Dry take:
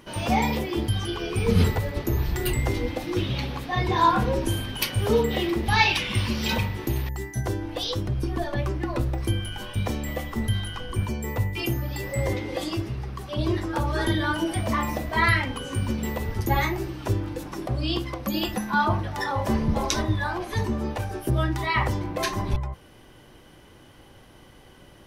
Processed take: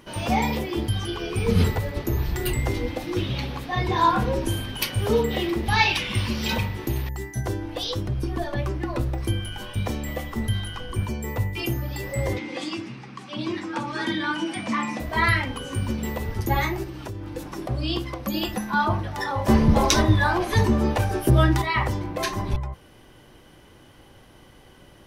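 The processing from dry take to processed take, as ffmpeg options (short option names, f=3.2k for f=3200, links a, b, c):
-filter_complex "[0:a]asettb=1/sr,asplit=3[a][b][c];[a]atrim=end=12.384[d];[b]atrim=start=12.38:end=15,asetpts=PTS-STARTPTS,afade=t=in:d=0.004:c=qsin,afade=t=out:st=2.616:d=0.004:c=qsin,highpass=f=160:w=0.5412,highpass=f=160:w=1.3066,equalizer=f=250:t=q:w=4:g=5,equalizer=f=410:t=q:w=4:g=-9,equalizer=f=630:t=q:w=4:g=-8,equalizer=f=2.4k:t=q:w=4:g=6,lowpass=f=8.4k:w=0.5412,lowpass=f=8.4k:w=1.3066[e];[c]atrim=start=14.996[f];[d][e]acrossfade=d=0.004:c1=hsin:c2=qsin[g];[g][f]acrossfade=d=0.004:c1=qsin:c2=hsin,asettb=1/sr,asplit=3[h][i][j];[h]atrim=end=16.834[k];[i]atrim=start=16.83:end=17.36,asetpts=PTS-STARTPTS,afade=t=in:d=0.004:c=qsin,afade=t=out:st=0.526:d=0.004:c=qsin,acompressor=threshold=-30dB:ratio=6:attack=3.2:release=140:knee=1:detection=peak[l];[j]atrim=start=17.356[m];[k][l]acrossfade=d=0.004:c1=hsin:c2=qsin[n];[n][m]acrossfade=d=0.004:c1=qsin:c2=hsin,asettb=1/sr,asplit=3[o][p][q];[o]atrim=end=19.484[r];[p]atrim=start=19.48:end=21.62,asetpts=PTS-STARTPTS,afade=t=in:d=0.004:c=qsin,afade=t=out:st=2.136:d=0.004:c=qsin,acontrast=73[s];[q]atrim=start=21.616[t];[r][s]acrossfade=d=0.004:c1=hsin:c2=qsin[u];[u][t]acrossfade=d=0.004:c1=qsin:c2=hsin"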